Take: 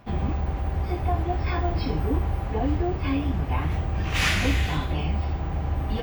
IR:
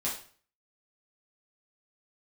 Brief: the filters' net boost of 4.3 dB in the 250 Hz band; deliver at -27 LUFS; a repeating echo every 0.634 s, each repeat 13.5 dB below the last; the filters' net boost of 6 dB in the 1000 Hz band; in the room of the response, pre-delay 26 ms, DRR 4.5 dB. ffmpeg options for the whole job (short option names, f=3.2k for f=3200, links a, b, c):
-filter_complex "[0:a]equalizer=f=250:t=o:g=5,equalizer=f=1k:t=o:g=8,aecho=1:1:634|1268:0.211|0.0444,asplit=2[a][b];[1:a]atrim=start_sample=2205,adelay=26[c];[b][c]afir=irnorm=-1:irlink=0,volume=-9.5dB[d];[a][d]amix=inputs=2:normalize=0,volume=-4.5dB"